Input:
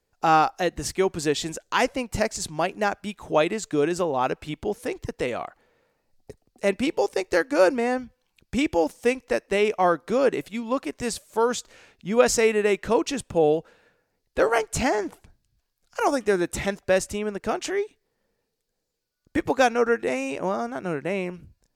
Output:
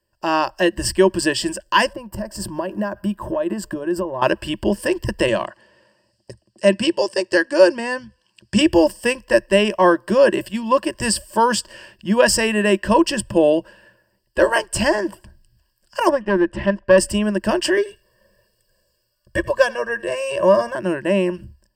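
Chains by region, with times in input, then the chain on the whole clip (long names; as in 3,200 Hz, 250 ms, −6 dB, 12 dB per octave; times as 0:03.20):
0:01.93–0:04.22: flat-topped bell 4,200 Hz −10.5 dB 2.6 octaves + downward compressor 10 to 1, threshold −31 dBFS + one half of a high-frequency compander decoder only
0:05.28–0:08.61: Chebyshev band-pass filter 110–6,500 Hz + high-shelf EQ 3,600 Hz +6 dB
0:16.09–0:16.98: low-pass filter 2,400 Hz + tube saturation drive 14 dB, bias 0.6
0:17.77–0:20.75: comb filter 1.8 ms, depth 99% + single-tap delay 85 ms −21.5 dB
whole clip: EQ curve with evenly spaced ripples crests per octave 1.3, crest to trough 16 dB; automatic gain control gain up to 9.5 dB; level −1 dB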